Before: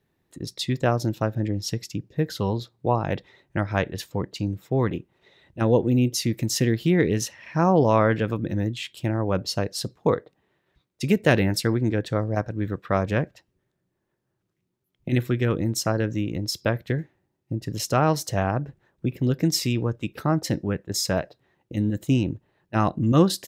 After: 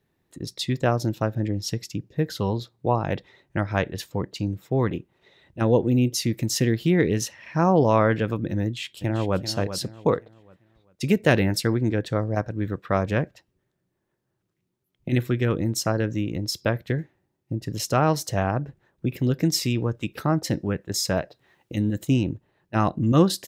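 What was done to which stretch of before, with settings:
8.62–9.39 s: echo throw 390 ms, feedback 35%, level -10.5 dB
19.12–22.05 s: tape noise reduction on one side only encoder only

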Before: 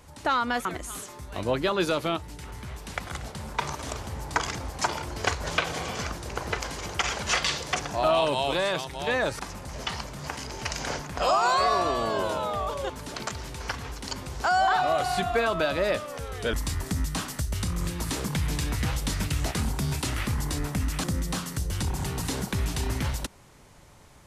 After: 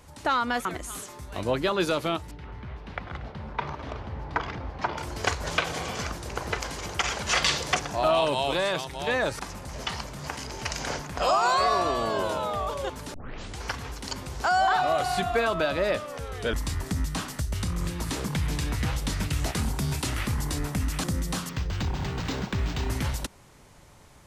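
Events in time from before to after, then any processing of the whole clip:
2.31–4.98 s: distance through air 310 m
7.36–7.77 s: gain +3 dB
13.14 s: tape start 0.48 s
15.54–19.33 s: treble shelf 6.5 kHz -4.5 dB
21.49–22.90 s: decimation joined by straight lines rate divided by 4×

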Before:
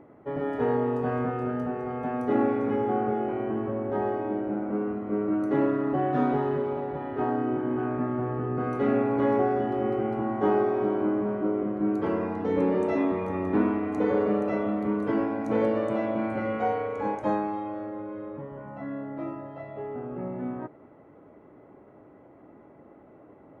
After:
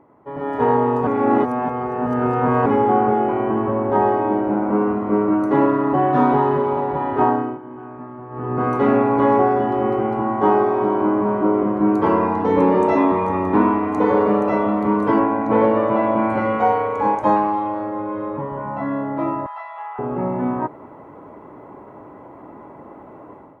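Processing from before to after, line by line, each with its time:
1.07–2.66 s: reverse
7.24–8.65 s: dip -18 dB, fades 0.35 s
15.19–16.30 s: low-pass 3 kHz
17.36–17.81 s: loudspeaker Doppler distortion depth 0.13 ms
19.46–19.99 s: steep high-pass 840 Hz
whole clip: peaking EQ 980 Hz +11.5 dB 0.45 oct; level rider gain up to 13.5 dB; trim -3 dB

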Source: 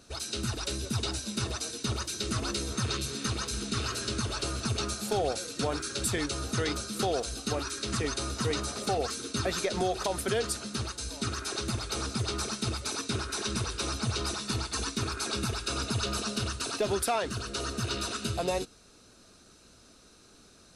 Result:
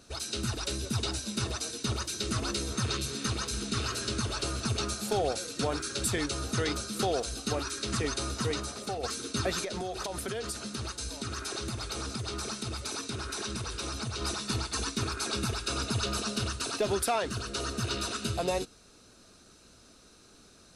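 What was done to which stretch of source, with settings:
8.32–9.03 s: fade out, to -7.5 dB
9.63–14.22 s: compression, threshold -31 dBFS

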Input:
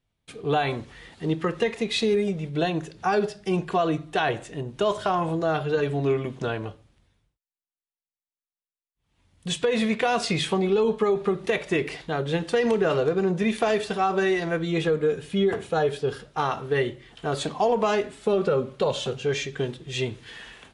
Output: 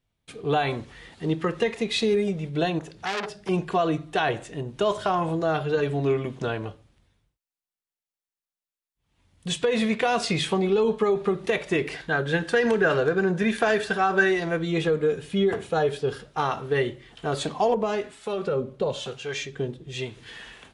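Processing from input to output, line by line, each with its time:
2.79–3.49 s: transformer saturation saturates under 3 kHz
11.93–14.32 s: peaking EQ 1.6 kHz +14.5 dB 0.22 oct
17.74–20.17 s: harmonic tremolo 1 Hz, crossover 700 Hz

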